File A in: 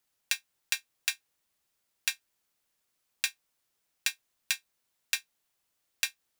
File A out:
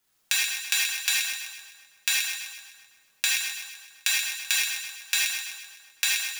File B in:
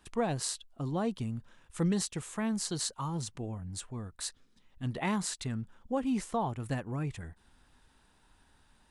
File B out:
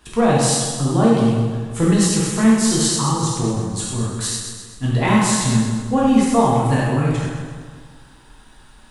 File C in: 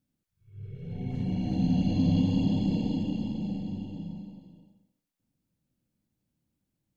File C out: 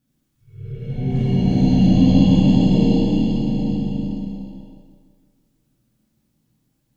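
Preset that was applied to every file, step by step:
dynamic equaliser 4,500 Hz, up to −3 dB, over −52 dBFS, Q 3.7
on a send: echo with a time of its own for lows and highs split 1,500 Hz, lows 167 ms, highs 128 ms, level −6 dB
on the sum: reverb whose tail is shaped and stops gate 130 ms flat, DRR −4.5 dB
normalise the peak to −2 dBFS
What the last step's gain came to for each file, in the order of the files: +3.0, +10.0, +5.5 decibels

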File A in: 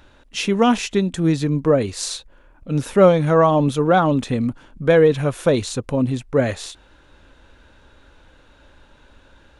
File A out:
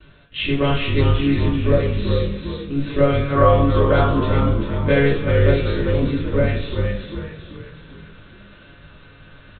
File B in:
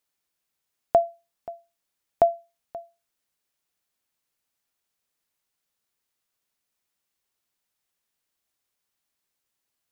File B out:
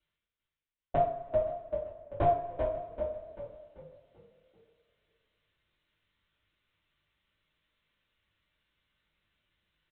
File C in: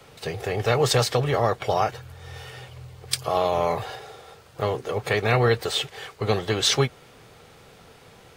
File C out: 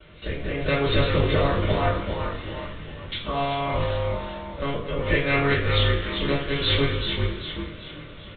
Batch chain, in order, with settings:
one-pitch LPC vocoder at 8 kHz 140 Hz
parametric band 790 Hz −14 dB 0.38 octaves
reversed playback
upward compression, threshold −39 dBFS
reversed playback
noise gate with hold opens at −46 dBFS
echo with shifted repeats 389 ms, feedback 46%, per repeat −40 Hz, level −6 dB
coupled-rooms reverb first 0.41 s, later 2.8 s, from −21 dB, DRR −5.5 dB
level −4.5 dB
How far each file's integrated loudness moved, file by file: −0.5, −8.0, −1.0 LU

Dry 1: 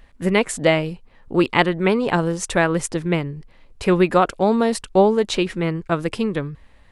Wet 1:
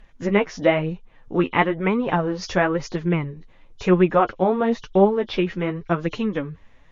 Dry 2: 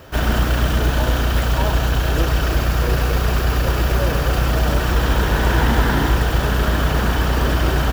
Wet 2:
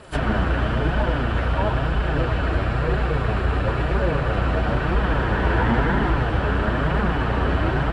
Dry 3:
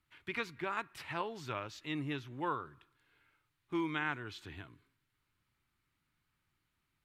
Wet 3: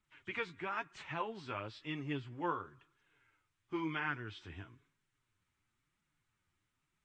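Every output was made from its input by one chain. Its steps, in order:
hearing-aid frequency compression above 2,900 Hz 1.5 to 1
treble cut that deepens with the level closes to 2,500 Hz, closed at −15.5 dBFS
flanger 1 Hz, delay 4.5 ms, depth 7.5 ms, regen +26%
level +2 dB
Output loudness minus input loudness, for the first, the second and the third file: −2.0, −3.5, −1.5 LU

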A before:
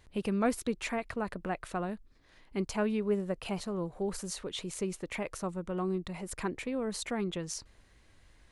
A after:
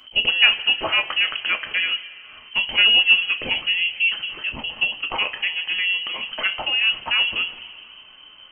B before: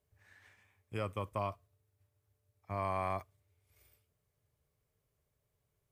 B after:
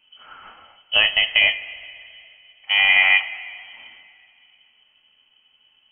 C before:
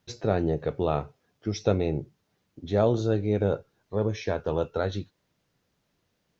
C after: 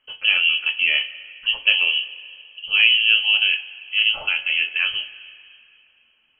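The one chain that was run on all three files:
voice inversion scrambler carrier 3,100 Hz
coupled-rooms reverb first 0.22 s, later 2.6 s, from −18 dB, DRR 4.5 dB
normalise the peak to −2 dBFS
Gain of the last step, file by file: +11.5, +18.5, +5.0 decibels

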